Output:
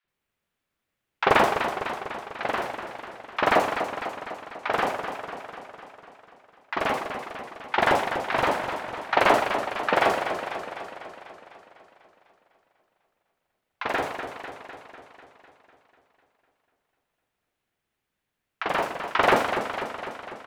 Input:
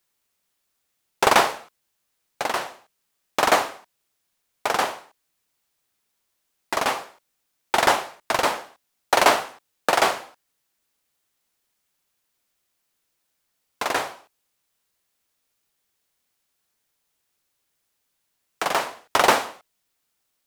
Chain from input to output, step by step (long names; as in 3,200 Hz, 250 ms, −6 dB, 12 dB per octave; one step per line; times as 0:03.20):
bass and treble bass +3 dB, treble −14 dB
three-band delay without the direct sound mids, lows, highs 40/80 ms, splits 990/4,800 Hz
feedback echo with a swinging delay time 249 ms, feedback 63%, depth 113 cents, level −8 dB